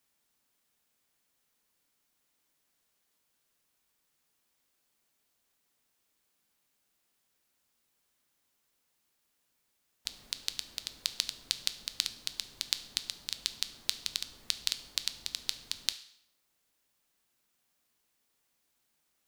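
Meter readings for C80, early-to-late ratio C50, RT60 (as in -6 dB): 17.5 dB, 14.5 dB, 0.65 s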